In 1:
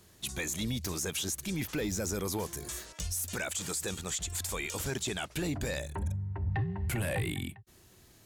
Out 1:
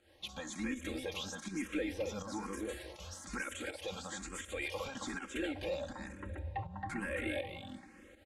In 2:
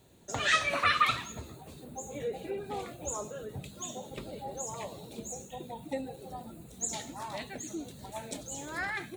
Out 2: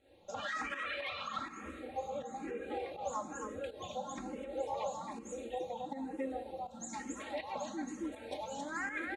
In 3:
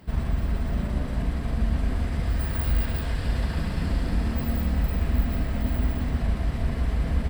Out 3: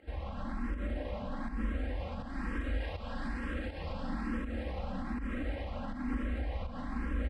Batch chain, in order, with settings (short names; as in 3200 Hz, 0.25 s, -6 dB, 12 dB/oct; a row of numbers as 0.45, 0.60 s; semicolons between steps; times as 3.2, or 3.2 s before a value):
in parallel at +2.5 dB: compressor, threshold -37 dBFS; on the sum: LPF 11000 Hz 24 dB/oct; tone controls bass -10 dB, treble -14 dB; on a send: echo 0.271 s -3.5 dB; on the sum: plate-style reverb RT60 4.1 s, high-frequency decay 0.7×, DRR 15 dB; limiter -23 dBFS; comb 3.7 ms, depth 76%; pump 81 bpm, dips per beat 1, -10 dB, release 0.168 s; low shelf 370 Hz +2.5 dB; endless phaser +1.1 Hz; gain -5.5 dB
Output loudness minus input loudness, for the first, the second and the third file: -6.5, -6.5, -11.0 LU